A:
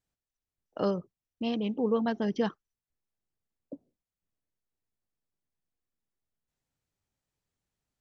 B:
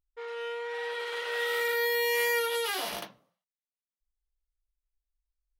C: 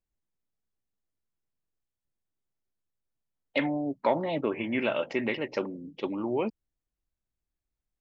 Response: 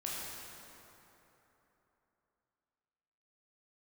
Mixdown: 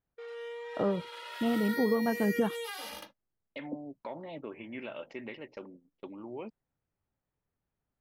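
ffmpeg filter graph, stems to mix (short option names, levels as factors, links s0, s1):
-filter_complex "[0:a]lowpass=1700,volume=1.26[s0];[1:a]asplit=2[s1][s2];[s2]adelay=2.2,afreqshift=0.45[s3];[s1][s3]amix=inputs=2:normalize=1,volume=0.631[s4];[2:a]volume=0.237[s5];[s4][s5]amix=inputs=2:normalize=0,agate=range=0.0316:threshold=0.00282:ratio=16:detection=peak,alimiter=level_in=1.88:limit=0.0631:level=0:latency=1:release=107,volume=0.531,volume=1[s6];[s0][s6]amix=inputs=2:normalize=0,alimiter=limit=0.133:level=0:latency=1:release=404"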